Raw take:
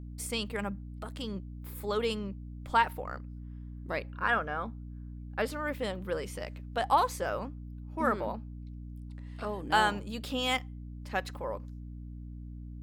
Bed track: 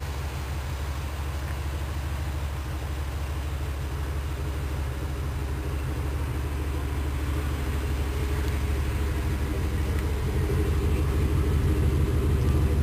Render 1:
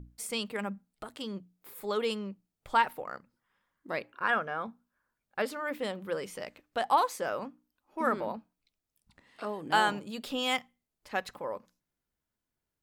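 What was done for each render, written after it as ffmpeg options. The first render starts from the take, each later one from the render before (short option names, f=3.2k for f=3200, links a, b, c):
-af "bandreject=f=60:t=h:w=6,bandreject=f=120:t=h:w=6,bandreject=f=180:t=h:w=6,bandreject=f=240:t=h:w=6,bandreject=f=300:t=h:w=6"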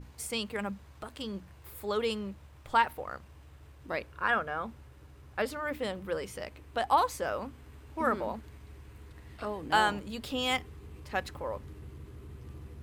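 -filter_complex "[1:a]volume=-23dB[a];[0:a][a]amix=inputs=2:normalize=0"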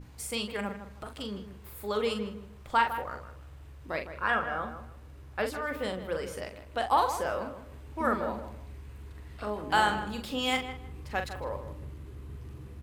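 -filter_complex "[0:a]asplit=2[a][b];[b]adelay=43,volume=-7dB[c];[a][c]amix=inputs=2:normalize=0,asplit=2[d][e];[e]adelay=157,lowpass=f=2.1k:p=1,volume=-10dB,asplit=2[f][g];[g]adelay=157,lowpass=f=2.1k:p=1,volume=0.26,asplit=2[h][i];[i]adelay=157,lowpass=f=2.1k:p=1,volume=0.26[j];[f][h][j]amix=inputs=3:normalize=0[k];[d][k]amix=inputs=2:normalize=0"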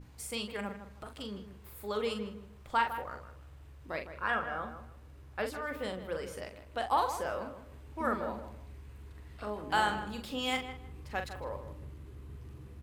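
-af "volume=-4dB"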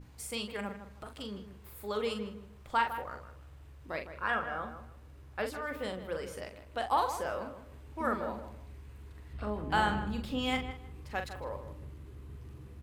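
-filter_complex "[0:a]asettb=1/sr,asplit=3[a][b][c];[a]atrim=end=9.334[d];[b]atrim=start=9.33:end=10.71,asetpts=PTS-STARTPTS,afade=t=in:d=0.004:c=qsin,afade=t=out:st=1.376:d=0.004:c=qsin,bass=f=250:g=9,treble=f=4k:g=-5[e];[c]atrim=start=10.706[f];[d][e]acrossfade=d=0.004:c1=hsin:c2=qsin[g];[g][f]acrossfade=d=0.004:c1=qsin:c2=hsin"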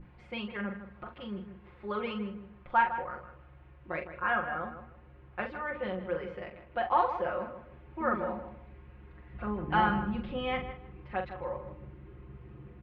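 -af "lowpass=f=2.6k:w=0.5412,lowpass=f=2.6k:w=1.3066,aecho=1:1:5.6:0.88"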